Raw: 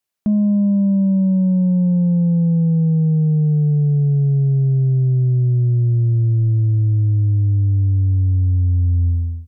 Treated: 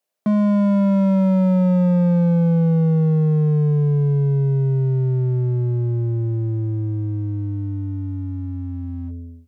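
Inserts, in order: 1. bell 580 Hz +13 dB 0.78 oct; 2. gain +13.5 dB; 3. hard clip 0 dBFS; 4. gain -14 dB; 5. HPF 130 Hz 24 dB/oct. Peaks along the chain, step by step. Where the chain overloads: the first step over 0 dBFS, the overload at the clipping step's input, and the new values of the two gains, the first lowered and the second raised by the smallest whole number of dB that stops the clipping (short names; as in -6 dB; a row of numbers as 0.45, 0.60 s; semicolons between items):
-9.5, +4.0, 0.0, -14.0, -11.5 dBFS; step 2, 4.0 dB; step 2 +9.5 dB, step 4 -10 dB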